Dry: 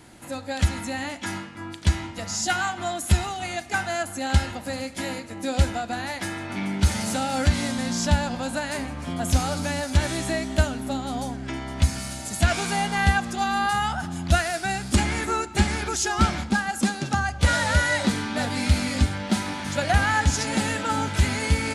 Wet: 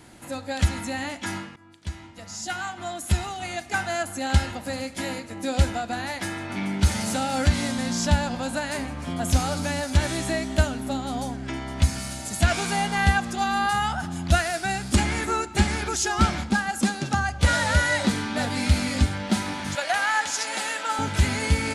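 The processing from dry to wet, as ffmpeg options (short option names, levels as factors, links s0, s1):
-filter_complex "[0:a]asettb=1/sr,asplit=3[s0][s1][s2];[s0]atrim=end=19.754[s3];[s1]atrim=start=19.75:end=20.99,asetpts=PTS-STARTPTS,afade=t=in:d=0.004:c=qsin,afade=t=out:st=1.236:d=0.004:c=qsin,highpass=640[s4];[s2]atrim=start=20.986[s5];[s3][s4]acrossfade=d=0.004:c1=hsin:c2=qsin[s6];[s6][s5]acrossfade=d=0.004:c1=qsin:c2=hsin,asplit=2[s7][s8];[s7]atrim=end=1.56,asetpts=PTS-STARTPTS,afade=t=out:st=1.556:d=0.004:c=hsin:silence=0.112202[s9];[s8]atrim=start=1.56,asetpts=PTS-STARTPTS,afade=t=in:d=2.36:silence=0.112202[s10];[s9][s10]concat=n=2:v=0:a=1"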